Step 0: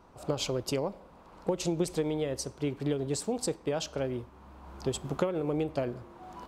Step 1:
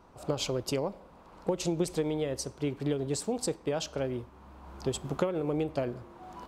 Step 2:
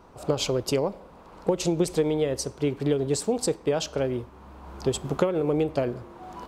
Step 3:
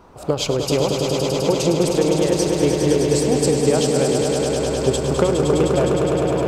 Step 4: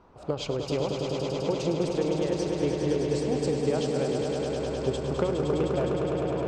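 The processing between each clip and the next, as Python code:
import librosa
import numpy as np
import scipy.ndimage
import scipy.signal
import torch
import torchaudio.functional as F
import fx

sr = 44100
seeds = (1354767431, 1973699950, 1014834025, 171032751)

y1 = x
y2 = fx.peak_eq(y1, sr, hz=440.0, db=3.0, octaves=0.36)
y2 = F.gain(torch.from_numpy(y2), 5.0).numpy()
y3 = fx.echo_swell(y2, sr, ms=103, loudest=5, wet_db=-6.5)
y3 = F.gain(torch.from_numpy(y3), 4.5).numpy()
y4 = fx.air_absorb(y3, sr, metres=100.0)
y4 = F.gain(torch.from_numpy(y4), -9.0).numpy()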